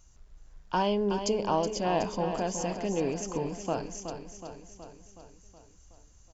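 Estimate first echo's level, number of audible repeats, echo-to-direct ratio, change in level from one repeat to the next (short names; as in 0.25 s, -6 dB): -8.5 dB, 6, -6.5 dB, -4.5 dB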